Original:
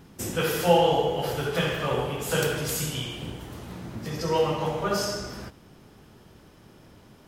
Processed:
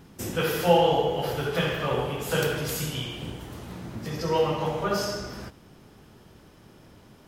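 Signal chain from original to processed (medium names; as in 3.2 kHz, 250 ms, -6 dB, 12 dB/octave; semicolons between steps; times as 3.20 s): dynamic bell 8.2 kHz, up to -5 dB, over -49 dBFS, Q 1.2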